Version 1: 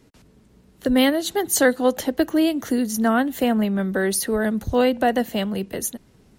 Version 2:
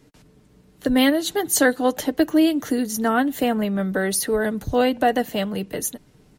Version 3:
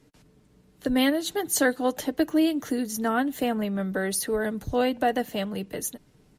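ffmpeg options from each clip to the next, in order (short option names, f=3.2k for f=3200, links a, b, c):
-af "aecho=1:1:6.7:0.37"
-af "volume=-5dB" -ar 32000 -c:a ac3 -b:a 96k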